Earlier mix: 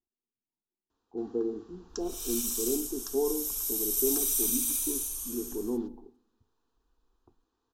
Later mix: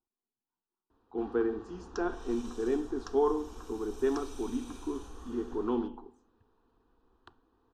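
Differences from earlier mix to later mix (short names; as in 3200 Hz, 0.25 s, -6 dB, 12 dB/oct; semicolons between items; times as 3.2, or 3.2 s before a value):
speech: remove Gaussian blur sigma 14 samples; first sound +12.0 dB; master: add tape spacing loss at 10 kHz 34 dB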